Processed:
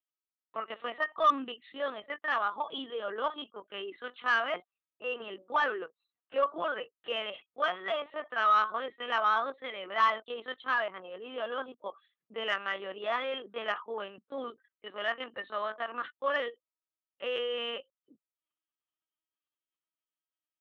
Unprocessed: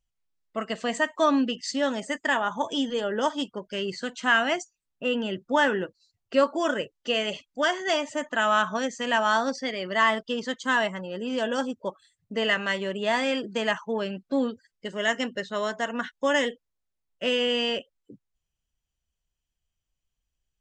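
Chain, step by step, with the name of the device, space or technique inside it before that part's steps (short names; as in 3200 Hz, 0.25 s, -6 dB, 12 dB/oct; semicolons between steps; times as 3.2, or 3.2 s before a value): 5.05–5.62 notches 60/120/180/240/300/360/420/480/540/600 Hz; talking toy (LPC vocoder at 8 kHz pitch kept; HPF 370 Hz 12 dB/oct; bell 1200 Hz +11 dB 0.31 oct; soft clip -8.5 dBFS, distortion -20 dB); gain -7 dB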